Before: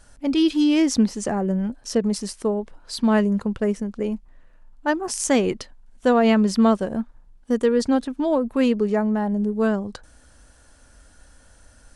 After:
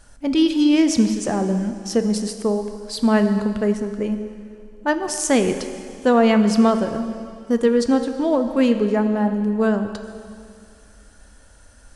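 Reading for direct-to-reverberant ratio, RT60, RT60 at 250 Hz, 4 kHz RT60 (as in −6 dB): 7.5 dB, 2.4 s, 2.4 s, 2.2 s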